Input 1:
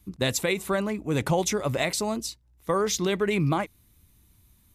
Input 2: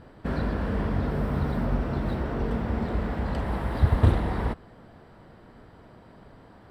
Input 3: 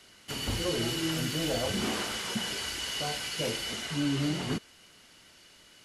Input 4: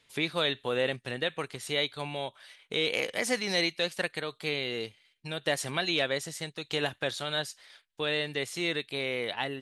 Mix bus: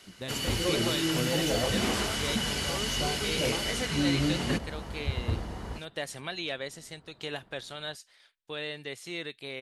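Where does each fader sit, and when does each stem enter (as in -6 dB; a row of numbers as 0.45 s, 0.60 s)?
-13.5 dB, -11.0 dB, +2.0 dB, -6.5 dB; 0.00 s, 1.25 s, 0.00 s, 0.50 s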